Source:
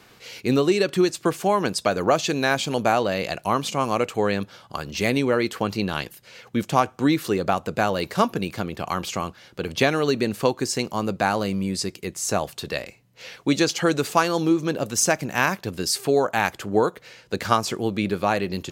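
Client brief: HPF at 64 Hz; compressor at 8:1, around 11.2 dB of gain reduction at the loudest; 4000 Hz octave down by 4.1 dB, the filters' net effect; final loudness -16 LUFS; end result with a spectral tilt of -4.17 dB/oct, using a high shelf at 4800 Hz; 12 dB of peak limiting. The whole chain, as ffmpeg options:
-af "highpass=64,equalizer=f=4k:t=o:g=-8,highshelf=f=4.8k:g=5,acompressor=threshold=-26dB:ratio=8,volume=19.5dB,alimiter=limit=-4.5dB:level=0:latency=1"

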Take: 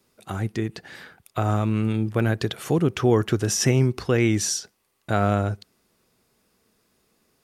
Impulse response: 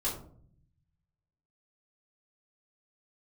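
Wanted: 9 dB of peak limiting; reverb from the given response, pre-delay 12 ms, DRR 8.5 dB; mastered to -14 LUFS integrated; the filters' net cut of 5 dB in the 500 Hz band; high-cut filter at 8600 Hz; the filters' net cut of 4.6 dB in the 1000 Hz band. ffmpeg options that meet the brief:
-filter_complex "[0:a]lowpass=8.6k,equalizer=f=500:t=o:g=-6,equalizer=f=1k:t=o:g=-4.5,alimiter=limit=-19.5dB:level=0:latency=1,asplit=2[a][b];[1:a]atrim=start_sample=2205,adelay=12[c];[b][c]afir=irnorm=-1:irlink=0,volume=-13.5dB[d];[a][d]amix=inputs=2:normalize=0,volume=15dB"

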